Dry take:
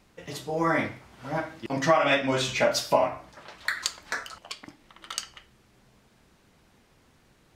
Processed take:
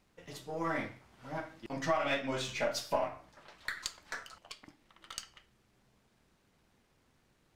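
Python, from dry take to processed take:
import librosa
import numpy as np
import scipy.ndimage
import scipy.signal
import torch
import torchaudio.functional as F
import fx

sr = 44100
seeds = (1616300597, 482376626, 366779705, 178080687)

y = np.where(x < 0.0, 10.0 ** (-3.0 / 20.0) * x, x)
y = F.gain(torch.from_numpy(y), -8.5).numpy()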